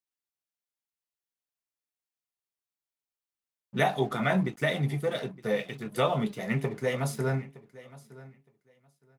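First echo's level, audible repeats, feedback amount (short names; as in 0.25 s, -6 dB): -19.5 dB, 2, 17%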